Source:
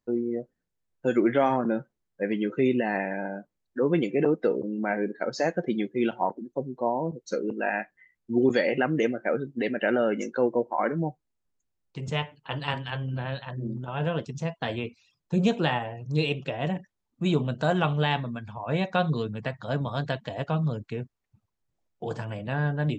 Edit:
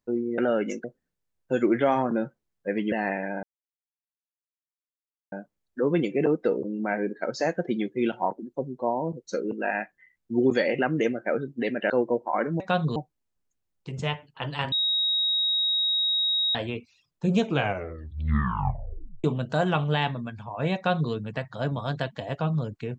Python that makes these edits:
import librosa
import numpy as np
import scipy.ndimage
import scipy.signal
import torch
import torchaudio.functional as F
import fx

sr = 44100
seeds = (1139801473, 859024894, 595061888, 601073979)

y = fx.edit(x, sr, fx.cut(start_s=2.46, length_s=0.34),
    fx.insert_silence(at_s=3.31, length_s=1.89),
    fx.move(start_s=9.89, length_s=0.46, to_s=0.38),
    fx.bleep(start_s=12.81, length_s=1.83, hz=3790.0, db=-21.5),
    fx.tape_stop(start_s=15.47, length_s=1.86),
    fx.duplicate(start_s=18.85, length_s=0.36, to_s=11.05), tone=tone)